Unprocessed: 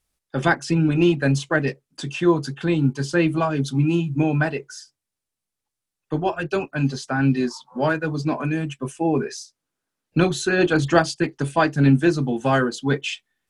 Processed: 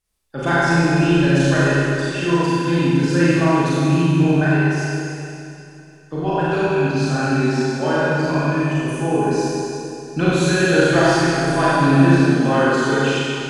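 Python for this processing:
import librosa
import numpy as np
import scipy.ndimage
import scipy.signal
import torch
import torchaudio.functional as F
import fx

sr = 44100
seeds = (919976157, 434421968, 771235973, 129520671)

y = fx.doubler(x, sr, ms=34.0, db=-7.0)
y = fx.rev_schroeder(y, sr, rt60_s=2.8, comb_ms=32, drr_db=-9.0)
y = F.gain(torch.from_numpy(y), -5.0).numpy()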